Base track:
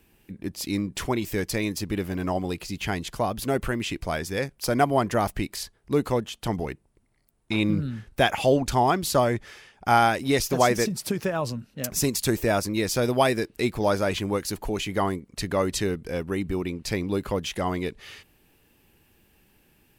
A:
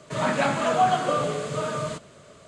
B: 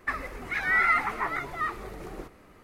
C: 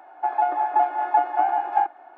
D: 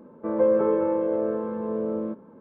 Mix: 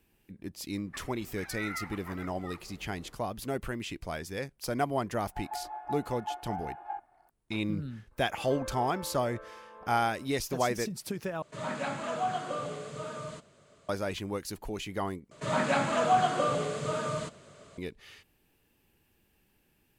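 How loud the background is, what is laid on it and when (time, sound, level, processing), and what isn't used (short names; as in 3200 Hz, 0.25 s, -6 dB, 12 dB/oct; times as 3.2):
base track -8.5 dB
0.86 add B -16 dB
5.13 add C -17.5 dB
8.11 add D -2.5 dB + HPF 1500 Hz
11.42 replace with A -11 dB
15.31 replace with A -4 dB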